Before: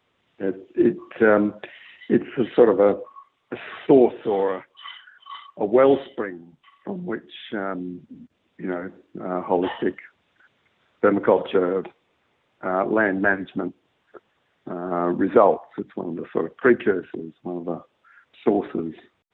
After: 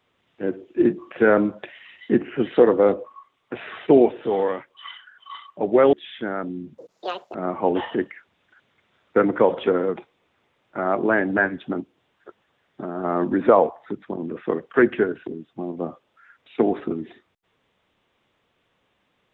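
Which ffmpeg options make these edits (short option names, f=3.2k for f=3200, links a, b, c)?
-filter_complex "[0:a]asplit=4[a][b][c][d];[a]atrim=end=5.932[e];[b]atrim=start=7.238:end=8.094[f];[c]atrim=start=8.09:end=9.22,asetpts=PTS-STARTPTS,asetrate=88200,aresample=44100,atrim=end_sample=24916,asetpts=PTS-STARTPTS[g];[d]atrim=start=9.216[h];[e][f]acrossfade=d=0.004:c1=hsin:c2=hsin[i];[i][g]acrossfade=d=0.004:c1=hsin:c2=hsin[j];[j][h]acrossfade=d=0.004:c1=hsin:c2=hsin"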